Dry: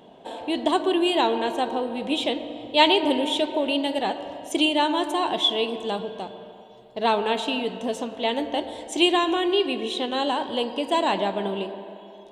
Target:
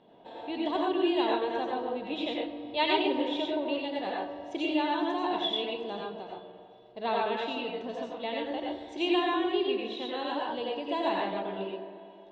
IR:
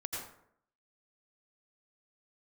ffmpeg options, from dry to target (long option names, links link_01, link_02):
-filter_complex "[0:a]lowpass=frequency=4700:width=0.5412,lowpass=frequency=4700:width=1.3066,bandreject=frequency=3100:width=12[link_01];[1:a]atrim=start_sample=2205,atrim=end_sample=6615[link_02];[link_01][link_02]afir=irnorm=-1:irlink=0,volume=-7.5dB"